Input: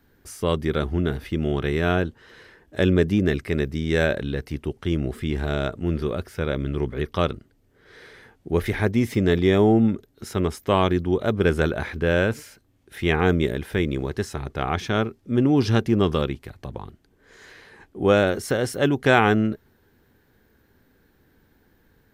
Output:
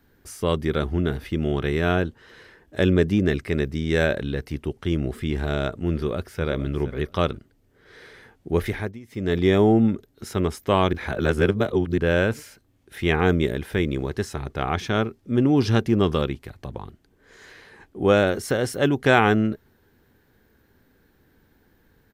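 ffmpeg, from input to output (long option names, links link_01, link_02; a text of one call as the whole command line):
ffmpeg -i in.wav -filter_complex "[0:a]asettb=1/sr,asplit=3[link_01][link_02][link_03];[link_01]atrim=end=2.944[link_04];[link_02]atrim=start=2.94:end=3.91,asetpts=PTS-STARTPTS,afade=type=in:duration=0.004:curve=qsin,afade=type=out:start_time=0.966:duration=0.004:curve=qsin,equalizer=frequency=12000:width=5.3:gain=-7[link_05];[link_03]atrim=start=3.906[link_06];[link_04][link_05]acrossfade=duration=0.004:curve1=hsin:curve2=qsin[link_07];[link_07][link_06]acrossfade=duration=0.004:curve1=qsin:curve2=hsin,asplit=2[link_08][link_09];[link_09]afade=type=in:start_time=5.94:duration=0.01,afade=type=out:start_time=6.43:duration=0.01,aecho=0:1:470|940:0.223872|0.0335808[link_10];[link_08][link_10]amix=inputs=2:normalize=0,asplit=5[link_11][link_12][link_13][link_14][link_15];[link_11]atrim=end=8.99,asetpts=PTS-STARTPTS,afade=type=out:start_time=8.62:duration=0.37:silence=0.0794328[link_16];[link_12]atrim=start=8.99:end=9.07,asetpts=PTS-STARTPTS,volume=-22dB[link_17];[link_13]atrim=start=9.07:end=10.932,asetpts=PTS-STARTPTS,afade=type=in:duration=0.37:silence=0.0794328[link_18];[link_14]atrim=start=10.928:end=11.982,asetpts=PTS-STARTPTS,areverse[link_19];[link_15]atrim=start=11.978[link_20];[link_16][link_17][link_18]concat=n=3:v=0:a=1[link_21];[link_21][link_19]acrossfade=duration=0.004:curve1=hsin:curve2=hsin[link_22];[link_22][link_20]acrossfade=duration=0.004:curve1=hsin:curve2=hsin" out.wav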